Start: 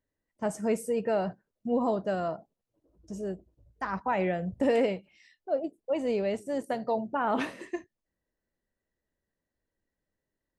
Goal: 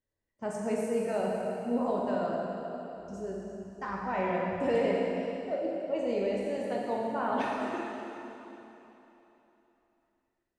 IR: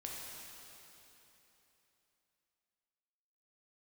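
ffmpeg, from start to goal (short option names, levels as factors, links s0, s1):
-filter_complex "[0:a]lowpass=9200[s0];[1:a]atrim=start_sample=2205[s1];[s0][s1]afir=irnorm=-1:irlink=0"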